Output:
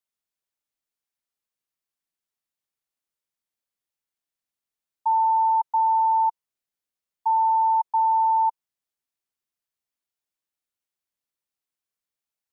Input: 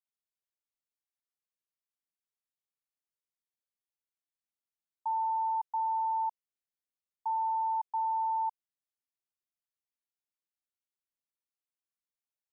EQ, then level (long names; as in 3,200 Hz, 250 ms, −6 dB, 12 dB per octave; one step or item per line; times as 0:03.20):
dynamic equaliser 930 Hz, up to +7 dB, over −46 dBFS, Q 4.2
+4.5 dB